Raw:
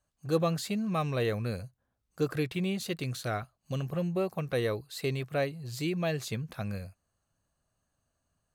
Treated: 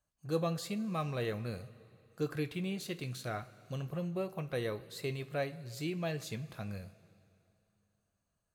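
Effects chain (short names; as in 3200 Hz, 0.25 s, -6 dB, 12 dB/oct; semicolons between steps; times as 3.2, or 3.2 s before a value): two-slope reverb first 0.24 s, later 2.7 s, from -17 dB, DRR 8.5 dB; gain -6 dB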